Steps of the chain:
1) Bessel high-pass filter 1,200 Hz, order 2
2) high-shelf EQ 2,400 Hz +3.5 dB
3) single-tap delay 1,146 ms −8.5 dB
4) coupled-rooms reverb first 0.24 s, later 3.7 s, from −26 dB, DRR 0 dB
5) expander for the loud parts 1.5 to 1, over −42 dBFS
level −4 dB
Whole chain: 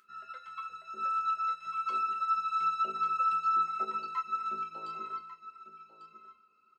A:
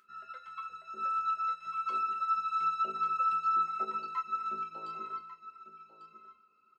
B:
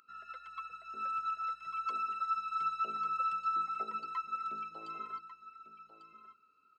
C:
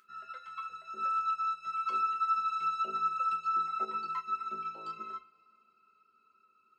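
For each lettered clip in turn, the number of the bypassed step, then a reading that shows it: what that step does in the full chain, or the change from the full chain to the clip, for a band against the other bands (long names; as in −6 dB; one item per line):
2, 4 kHz band −2.0 dB
4, change in momentary loudness spread +2 LU
3, change in momentary loudness spread −5 LU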